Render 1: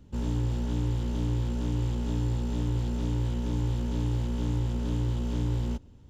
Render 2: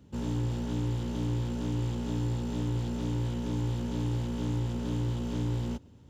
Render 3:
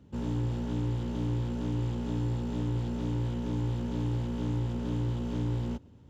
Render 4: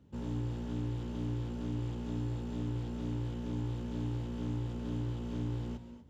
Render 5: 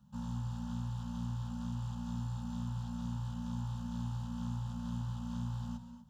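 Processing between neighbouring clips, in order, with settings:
high-pass filter 89 Hz 12 dB per octave; reversed playback; upward compression, threshold −50 dBFS; reversed playback
high-shelf EQ 4,200 Hz −8.5 dB
reverb whose tail is shaped and stops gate 270 ms rising, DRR 9 dB; level −5.5 dB
Chebyshev band-stop filter 240–610 Hz, order 3; phaser with its sweep stopped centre 430 Hz, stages 8; level +4 dB

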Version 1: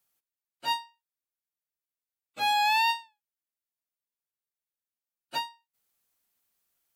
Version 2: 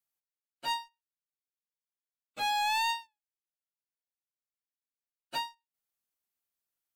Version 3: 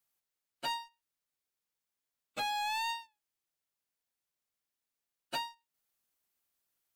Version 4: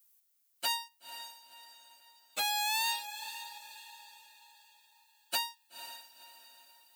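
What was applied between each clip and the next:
leveller curve on the samples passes 2; level −8 dB
downward compressor 6 to 1, threshold −40 dBFS, peak gain reduction 11 dB; level +5.5 dB
RIAA equalisation recording; feedback delay with all-pass diffusion 505 ms, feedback 43%, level −11.5 dB

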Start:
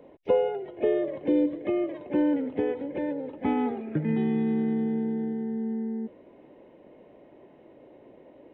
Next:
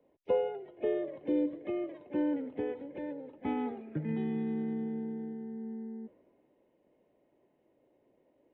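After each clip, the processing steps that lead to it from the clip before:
multiband upward and downward expander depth 40%
level −8 dB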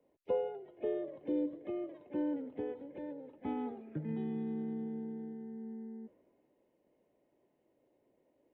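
dynamic equaliser 2,200 Hz, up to −6 dB, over −59 dBFS, Q 1.4
level −4 dB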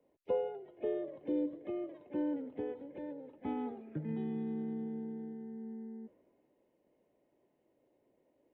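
no processing that can be heard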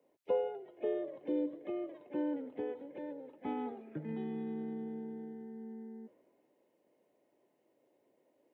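high-pass filter 310 Hz 6 dB per octave
level +2.5 dB

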